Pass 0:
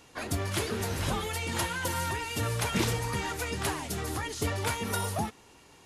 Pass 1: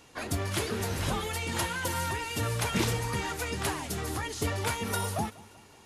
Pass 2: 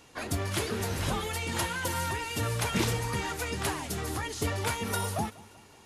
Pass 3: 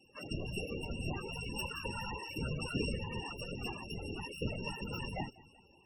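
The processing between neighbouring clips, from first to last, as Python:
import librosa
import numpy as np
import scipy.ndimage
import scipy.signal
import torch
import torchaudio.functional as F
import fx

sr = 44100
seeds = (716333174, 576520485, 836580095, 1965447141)

y1 = fx.echo_feedback(x, sr, ms=192, feedback_pct=57, wet_db=-22.0)
y2 = y1
y3 = np.r_[np.sort(y2[:len(y2) // 16 * 16].reshape(-1, 16), axis=1).ravel(), y2[len(y2) // 16 * 16:]]
y3 = fx.whisperise(y3, sr, seeds[0])
y3 = fx.spec_topn(y3, sr, count=32)
y3 = F.gain(torch.from_numpy(y3), -6.5).numpy()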